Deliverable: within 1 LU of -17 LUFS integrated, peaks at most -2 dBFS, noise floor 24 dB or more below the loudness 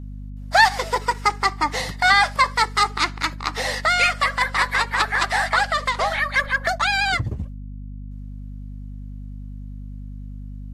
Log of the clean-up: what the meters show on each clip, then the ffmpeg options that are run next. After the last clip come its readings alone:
hum 50 Hz; harmonics up to 250 Hz; hum level -31 dBFS; loudness -20.0 LUFS; peak -2.0 dBFS; loudness target -17.0 LUFS
-> -af "bandreject=f=50:t=h:w=4,bandreject=f=100:t=h:w=4,bandreject=f=150:t=h:w=4,bandreject=f=200:t=h:w=4,bandreject=f=250:t=h:w=4"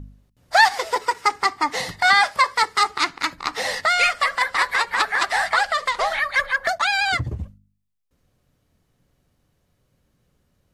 hum none; loudness -20.0 LUFS; peak -2.0 dBFS; loudness target -17.0 LUFS
-> -af "volume=3dB,alimiter=limit=-2dB:level=0:latency=1"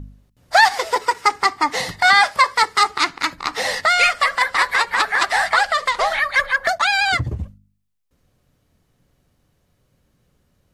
loudness -17.0 LUFS; peak -2.0 dBFS; noise floor -66 dBFS

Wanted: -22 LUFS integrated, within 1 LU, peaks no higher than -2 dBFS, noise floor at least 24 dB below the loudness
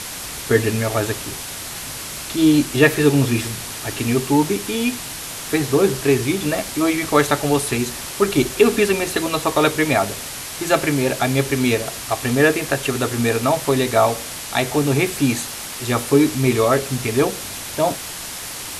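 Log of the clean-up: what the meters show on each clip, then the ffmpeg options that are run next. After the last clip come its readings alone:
noise floor -31 dBFS; noise floor target -44 dBFS; loudness -19.5 LUFS; peak -1.0 dBFS; loudness target -22.0 LUFS
-> -af "afftdn=nr=13:nf=-31"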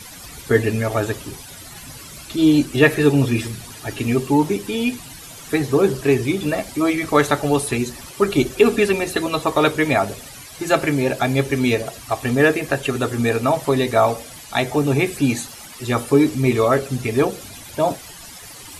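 noise floor -39 dBFS; noise floor target -44 dBFS
-> -af "afftdn=nr=6:nf=-39"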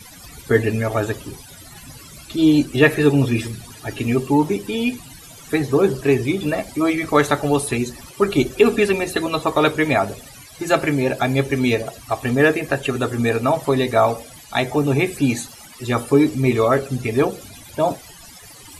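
noise floor -42 dBFS; noise floor target -44 dBFS
-> -af "afftdn=nr=6:nf=-42"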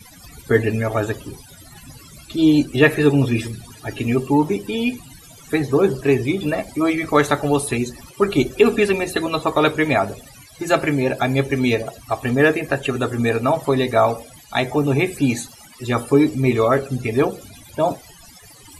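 noise floor -45 dBFS; loudness -19.5 LUFS; peak -1.0 dBFS; loudness target -22.0 LUFS
-> -af "volume=-2.5dB"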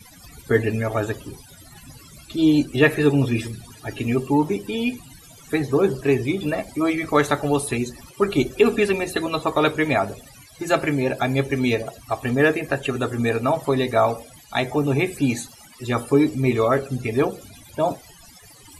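loudness -22.0 LUFS; peak -3.5 dBFS; noise floor -47 dBFS

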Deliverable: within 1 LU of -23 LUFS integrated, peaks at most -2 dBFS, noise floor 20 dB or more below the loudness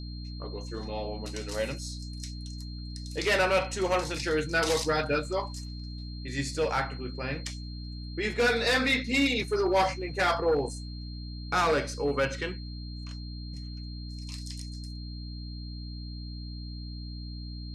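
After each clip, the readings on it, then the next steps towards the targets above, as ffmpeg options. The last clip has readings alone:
hum 60 Hz; harmonics up to 300 Hz; hum level -36 dBFS; steady tone 4200 Hz; tone level -47 dBFS; loudness -30.5 LUFS; peak -16.0 dBFS; loudness target -23.0 LUFS
-> -af "bandreject=f=60:t=h:w=4,bandreject=f=120:t=h:w=4,bandreject=f=180:t=h:w=4,bandreject=f=240:t=h:w=4,bandreject=f=300:t=h:w=4"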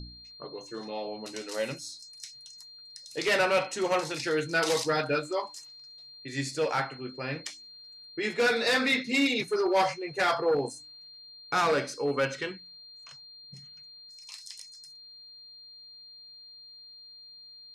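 hum none; steady tone 4200 Hz; tone level -47 dBFS
-> -af "bandreject=f=4.2k:w=30"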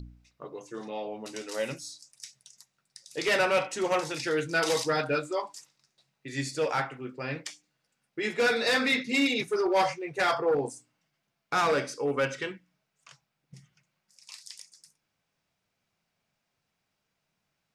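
steady tone none; loudness -28.5 LUFS; peak -17.0 dBFS; loudness target -23.0 LUFS
-> -af "volume=5.5dB"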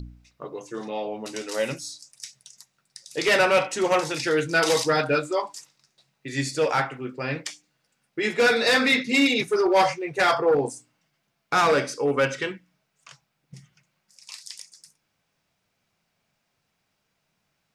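loudness -23.0 LUFS; peak -11.5 dBFS; noise floor -75 dBFS

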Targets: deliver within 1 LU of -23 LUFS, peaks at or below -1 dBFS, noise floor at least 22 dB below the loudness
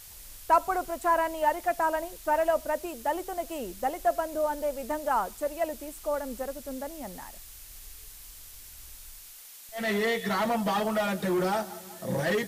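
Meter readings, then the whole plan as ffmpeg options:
noise floor -48 dBFS; noise floor target -51 dBFS; loudness -29.0 LUFS; peak -11.5 dBFS; loudness target -23.0 LUFS
-> -af "afftdn=nr=6:nf=-48"
-af "volume=6dB"

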